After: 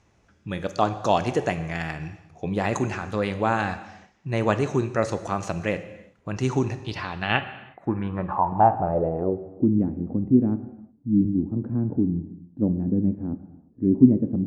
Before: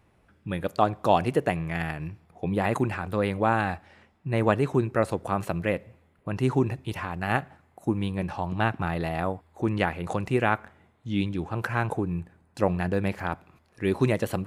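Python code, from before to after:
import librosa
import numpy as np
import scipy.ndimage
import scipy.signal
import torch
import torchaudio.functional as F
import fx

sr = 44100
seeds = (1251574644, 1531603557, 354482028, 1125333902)

y = fx.filter_sweep_lowpass(x, sr, from_hz=6300.0, to_hz=260.0, start_s=6.68, end_s=9.68, q=5.6)
y = fx.rev_gated(y, sr, seeds[0], gate_ms=390, shape='falling', drr_db=10.0)
y = fx.band_squash(y, sr, depth_pct=40, at=(11.25, 11.96))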